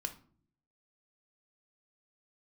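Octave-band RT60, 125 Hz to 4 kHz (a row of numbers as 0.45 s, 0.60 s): 0.90 s, 0.80 s, 0.60 s, 0.45 s, 0.35 s, 0.30 s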